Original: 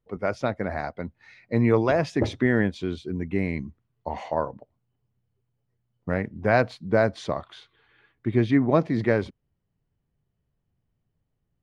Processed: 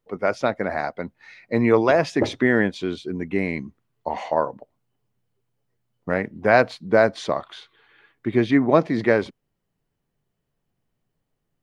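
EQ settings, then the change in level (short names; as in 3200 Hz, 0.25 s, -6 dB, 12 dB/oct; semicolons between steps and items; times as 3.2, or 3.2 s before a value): bell 65 Hz -14.5 dB 2.3 oct; +5.5 dB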